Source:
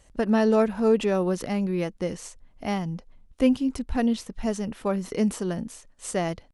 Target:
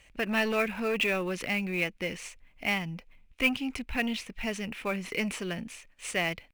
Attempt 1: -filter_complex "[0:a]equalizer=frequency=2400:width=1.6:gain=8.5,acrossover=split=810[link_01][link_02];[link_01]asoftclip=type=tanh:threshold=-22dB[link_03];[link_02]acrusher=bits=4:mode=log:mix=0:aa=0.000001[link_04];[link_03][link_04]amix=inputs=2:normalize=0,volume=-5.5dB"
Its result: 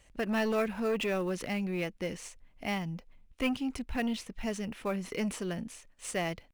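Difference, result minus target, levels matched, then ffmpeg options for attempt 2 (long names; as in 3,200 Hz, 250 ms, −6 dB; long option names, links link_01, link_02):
2,000 Hz band −5.0 dB
-filter_complex "[0:a]equalizer=frequency=2400:width=1.6:gain=20,acrossover=split=810[link_01][link_02];[link_01]asoftclip=type=tanh:threshold=-22dB[link_03];[link_02]acrusher=bits=4:mode=log:mix=0:aa=0.000001[link_04];[link_03][link_04]amix=inputs=2:normalize=0,volume=-5.5dB"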